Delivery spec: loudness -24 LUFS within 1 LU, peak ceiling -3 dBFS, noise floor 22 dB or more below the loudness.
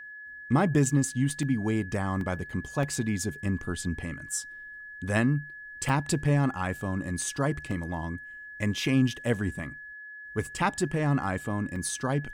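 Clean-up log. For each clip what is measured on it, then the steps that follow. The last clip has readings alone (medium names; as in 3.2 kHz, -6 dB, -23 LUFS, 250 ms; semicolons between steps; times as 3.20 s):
dropouts 6; longest dropout 1.8 ms; steady tone 1.7 kHz; tone level -41 dBFS; loudness -29.0 LUFS; peak level -12.0 dBFS; loudness target -24.0 LUFS
-> interpolate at 1.43/2.21/2.83/5.89/7.71/11.76 s, 1.8 ms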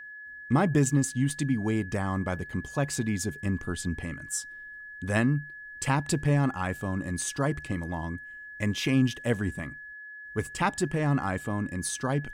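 dropouts 0; steady tone 1.7 kHz; tone level -41 dBFS
-> band-stop 1.7 kHz, Q 30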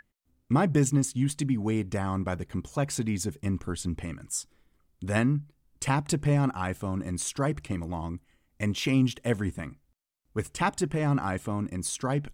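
steady tone not found; loudness -29.0 LUFS; peak level -11.5 dBFS; loudness target -24.0 LUFS
-> trim +5 dB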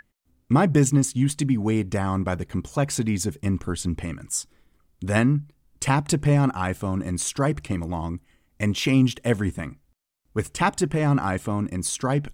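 loudness -24.0 LUFS; peak level -6.5 dBFS; noise floor -68 dBFS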